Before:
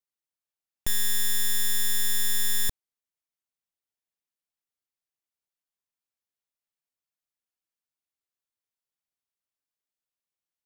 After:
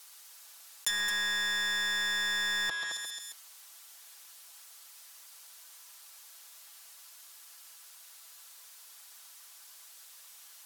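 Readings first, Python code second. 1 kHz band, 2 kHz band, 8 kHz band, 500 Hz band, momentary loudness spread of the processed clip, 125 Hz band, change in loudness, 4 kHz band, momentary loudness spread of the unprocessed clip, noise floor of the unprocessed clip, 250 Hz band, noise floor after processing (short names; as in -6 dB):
+8.0 dB, +8.0 dB, -8.0 dB, -2.0 dB, 21 LU, under -15 dB, -4.0 dB, +1.5 dB, 5 LU, under -85 dBFS, -5.0 dB, -54 dBFS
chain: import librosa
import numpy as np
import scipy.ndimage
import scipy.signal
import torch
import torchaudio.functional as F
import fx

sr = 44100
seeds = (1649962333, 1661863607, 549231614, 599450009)

p1 = scipy.signal.sosfilt(scipy.signal.butter(2, 1100.0, 'highpass', fs=sr, output='sos'), x)
p2 = fx.peak_eq(p1, sr, hz=2200.0, db=-5.5, octaves=1.2)
p3 = p2 + fx.echo_feedback(p2, sr, ms=135, feedback_pct=22, wet_db=-13, dry=0)
p4 = fx.env_lowpass_down(p3, sr, base_hz=1900.0, full_db=-28.5)
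p5 = p4 + 0.66 * np.pad(p4, (int(6.0 * sr / 1000.0), 0))[:len(p4)]
p6 = p5 + 10.0 ** (-13.5 / 20.0) * np.pad(p5, (int(217 * sr / 1000.0), 0))[:len(p5)]
p7 = np.where(np.abs(p6) >= 10.0 ** (-38.0 / 20.0), p6, 0.0)
p8 = p6 + (p7 * librosa.db_to_amplitude(-4.0))
y = fx.env_flatten(p8, sr, amount_pct=70)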